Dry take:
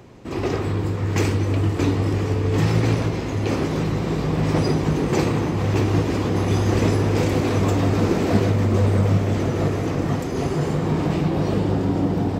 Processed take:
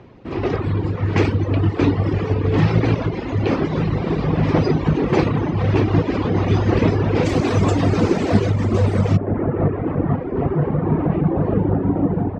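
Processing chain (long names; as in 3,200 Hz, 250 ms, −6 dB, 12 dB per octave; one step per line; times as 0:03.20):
Bessel low-pass filter 3,200 Hz, order 4, from 0:07.24 6,700 Hz, from 0:09.16 1,300 Hz
reverb reduction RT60 1.1 s
automatic gain control gain up to 4 dB
level +1.5 dB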